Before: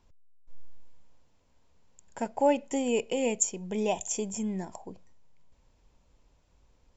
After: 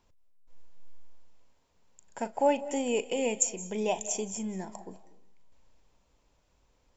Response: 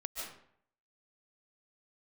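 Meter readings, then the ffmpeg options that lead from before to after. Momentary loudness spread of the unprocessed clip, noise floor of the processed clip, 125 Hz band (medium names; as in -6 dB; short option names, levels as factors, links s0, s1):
12 LU, -70 dBFS, -3.5 dB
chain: -filter_complex "[0:a]lowshelf=f=210:g=-7,asplit=2[s0][s1];[1:a]atrim=start_sample=2205,adelay=37[s2];[s1][s2]afir=irnorm=-1:irlink=0,volume=0.224[s3];[s0][s3]amix=inputs=2:normalize=0"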